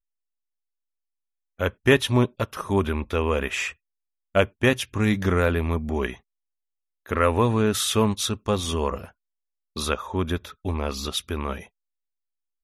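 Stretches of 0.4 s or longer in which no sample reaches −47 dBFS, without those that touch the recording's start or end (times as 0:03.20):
0:03.73–0:04.35
0:06.18–0:07.06
0:09.11–0:09.76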